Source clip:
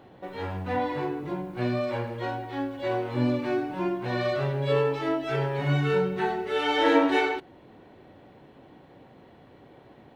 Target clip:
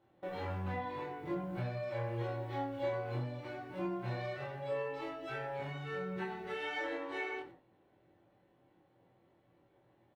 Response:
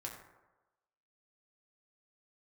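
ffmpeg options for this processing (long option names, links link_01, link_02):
-filter_complex "[0:a]agate=range=-16dB:threshold=-44dB:ratio=16:detection=peak,acompressor=threshold=-34dB:ratio=12,asplit=2[link_01][link_02];[link_02]adelay=23,volume=-3dB[link_03];[link_01][link_03]amix=inputs=2:normalize=0[link_04];[1:a]atrim=start_sample=2205,afade=type=out:start_time=0.15:duration=0.01,atrim=end_sample=7056[link_05];[link_04][link_05]afir=irnorm=-1:irlink=0,volume=-1dB"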